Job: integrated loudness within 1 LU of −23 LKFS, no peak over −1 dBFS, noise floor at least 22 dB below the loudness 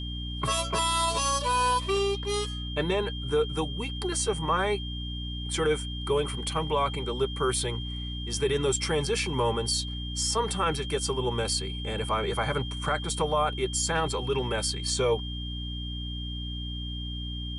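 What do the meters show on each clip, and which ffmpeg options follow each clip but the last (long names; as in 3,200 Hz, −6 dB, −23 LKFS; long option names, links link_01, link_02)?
mains hum 60 Hz; hum harmonics up to 300 Hz; level of the hum −33 dBFS; interfering tone 3,200 Hz; level of the tone −38 dBFS; integrated loudness −28.5 LKFS; sample peak −13.5 dBFS; target loudness −23.0 LKFS
→ -af "bandreject=frequency=60:width_type=h:width=4,bandreject=frequency=120:width_type=h:width=4,bandreject=frequency=180:width_type=h:width=4,bandreject=frequency=240:width_type=h:width=4,bandreject=frequency=300:width_type=h:width=4"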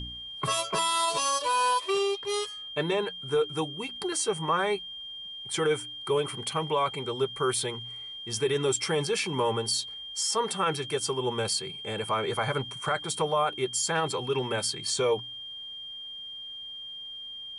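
mains hum none found; interfering tone 3,200 Hz; level of the tone −38 dBFS
→ -af "bandreject=frequency=3200:width=30"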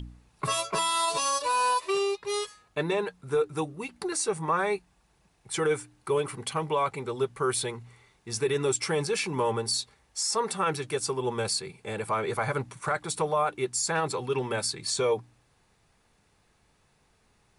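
interfering tone none found; integrated loudness −29.0 LKFS; sample peak −15.0 dBFS; target loudness −23.0 LKFS
→ -af "volume=6dB"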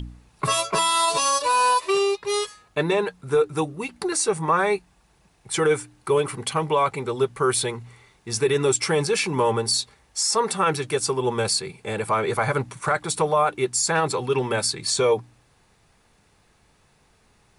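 integrated loudness −23.0 LKFS; sample peak −9.0 dBFS; background noise floor −61 dBFS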